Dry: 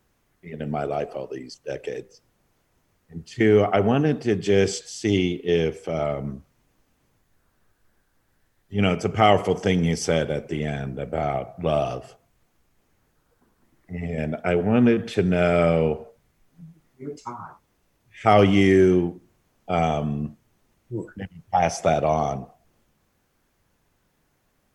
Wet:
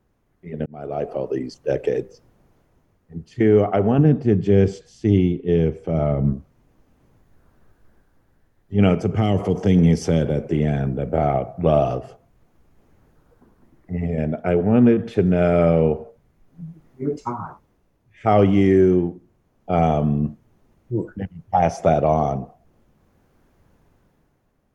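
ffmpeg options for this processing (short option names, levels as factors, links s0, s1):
-filter_complex "[0:a]asettb=1/sr,asplit=3[s0][s1][s2];[s0]atrim=end=3.984[s3];[s1]atrim=start=3.98:end=6.33,asetpts=PTS-STARTPTS,afade=t=in:d=0.004:c=qsin,afade=t=out:st=2.346:d=0.004:c=qsin,bass=f=250:g=8,treble=f=4000:g=-4[s4];[s2]atrim=start=6.326[s5];[s3][s4]acrossfade=d=0.004:c1=hsin:c2=qsin[s6];[s6][s5]acrossfade=d=0.004:c1=qsin:c2=hsin,asettb=1/sr,asplit=3[s7][s8][s9];[s7]atrim=end=9.014[s10];[s8]atrim=start=9.01:end=11.14,asetpts=PTS-STARTPTS,afade=t=in:d=0.004:c=qsin,afade=t=out:st=2.126:d=0.004:c=qsin,acrossover=split=330|3000[s11][s12][s13];[s12]acompressor=threshold=0.0355:ratio=6:attack=3.2:release=140:knee=2.83:detection=peak[s14];[s11][s14][s13]amix=inputs=3:normalize=0[s15];[s9]atrim=start=11.136[s16];[s10][s15]acrossfade=d=0.004:c1=hsin:c2=qsin[s17];[s17][s16]acrossfade=d=0.004:c1=qsin:c2=hsin,asplit=2[s18][s19];[s18]atrim=end=0.66,asetpts=PTS-STARTPTS,afade=t=out:st=0.656:d=0.004:c=hsin[s20];[s19]atrim=start=0.66,asetpts=PTS-STARTPTS,afade=t=in:d=0.74[s21];[s20][s21]concat=n=2:v=0:a=1,tiltshelf=f=1400:g=6.5,bandreject=f=7900:w=21,dynaudnorm=f=110:g=13:m=2.82,volume=0.631"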